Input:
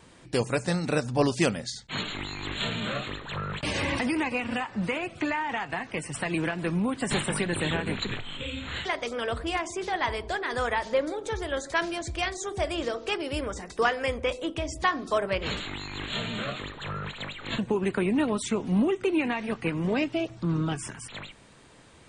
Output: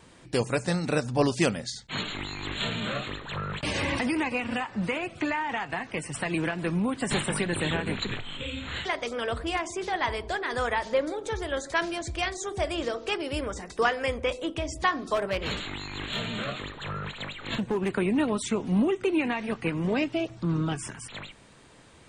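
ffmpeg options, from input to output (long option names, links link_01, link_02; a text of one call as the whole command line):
ffmpeg -i in.wav -filter_complex "[0:a]asplit=3[link_01][link_02][link_03];[link_01]afade=type=out:start_time=15.14:duration=0.02[link_04];[link_02]asoftclip=type=hard:threshold=-22.5dB,afade=type=in:start_time=15.14:duration=0.02,afade=type=out:start_time=17.94:duration=0.02[link_05];[link_03]afade=type=in:start_time=17.94:duration=0.02[link_06];[link_04][link_05][link_06]amix=inputs=3:normalize=0" out.wav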